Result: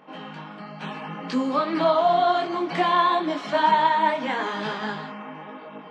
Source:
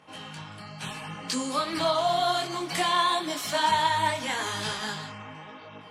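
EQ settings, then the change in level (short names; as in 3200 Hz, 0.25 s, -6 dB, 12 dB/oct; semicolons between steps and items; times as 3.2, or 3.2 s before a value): brick-wall FIR high-pass 160 Hz; tape spacing loss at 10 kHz 36 dB; +8.5 dB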